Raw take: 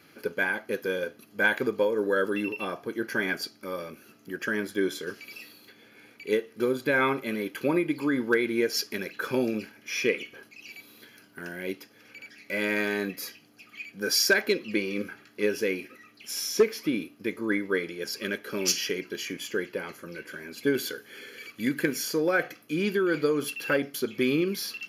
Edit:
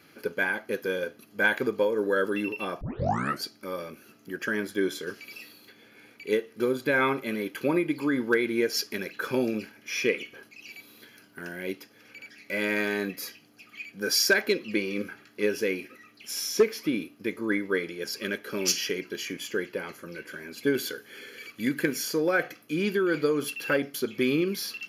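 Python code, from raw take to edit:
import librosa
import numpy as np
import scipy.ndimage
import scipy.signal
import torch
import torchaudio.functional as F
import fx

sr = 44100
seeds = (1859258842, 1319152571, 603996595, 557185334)

y = fx.edit(x, sr, fx.tape_start(start_s=2.81, length_s=0.62), tone=tone)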